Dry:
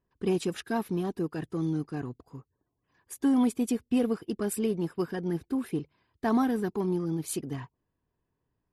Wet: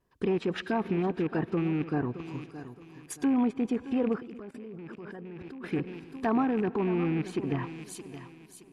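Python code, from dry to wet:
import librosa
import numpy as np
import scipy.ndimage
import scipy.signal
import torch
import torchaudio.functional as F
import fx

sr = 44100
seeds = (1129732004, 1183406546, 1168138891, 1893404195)

p1 = fx.rattle_buzz(x, sr, strikes_db=-33.0, level_db=-31.0)
p2 = fx.over_compress(p1, sr, threshold_db=-32.0, ratio=-0.5)
p3 = p1 + F.gain(torch.from_numpy(p2), -2.0).numpy()
p4 = fx.low_shelf(p3, sr, hz=230.0, db=-5.0)
p5 = fx.rev_freeverb(p4, sr, rt60_s=3.4, hf_ratio=0.7, predelay_ms=60, drr_db=19.0)
p6 = fx.vibrato(p5, sr, rate_hz=0.8, depth_cents=24.0)
p7 = fx.echo_feedback(p6, sr, ms=620, feedback_pct=32, wet_db=-13.5)
p8 = fx.env_lowpass_down(p7, sr, base_hz=1800.0, full_db=-25.0)
y = fx.level_steps(p8, sr, step_db=21, at=(4.2, 5.64))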